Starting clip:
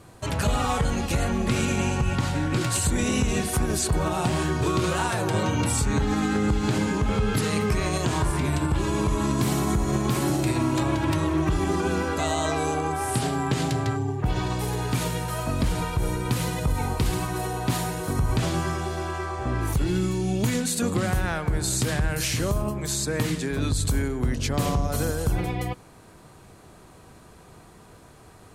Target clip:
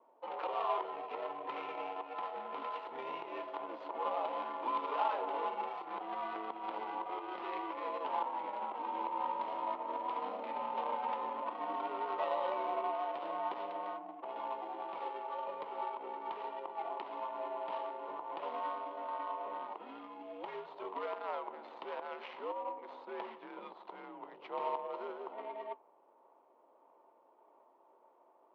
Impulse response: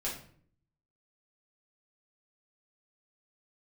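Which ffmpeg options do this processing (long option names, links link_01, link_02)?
-filter_complex "[0:a]afreqshift=-87,flanger=delay=3.4:depth=7.4:regen=-75:speed=0.48:shape=sinusoidal,asplit=2[link_01][link_02];[link_02]acrusher=samples=13:mix=1:aa=0.000001:lfo=1:lforange=13:lforate=1.7,volume=-12dB[link_03];[link_01][link_03]amix=inputs=2:normalize=0,adynamicsmooth=sensitivity=2:basefreq=760,highpass=frequency=450:width=0.5412,highpass=frequency=450:width=1.3066,equalizer=frequency=950:width_type=q:width=4:gain=10,equalizer=frequency=1600:width_type=q:width=4:gain=-8,equalizer=frequency=3000:width_type=q:width=4:gain=4,lowpass=frequency=3700:width=0.5412,lowpass=frequency=3700:width=1.3066,volume=-5dB"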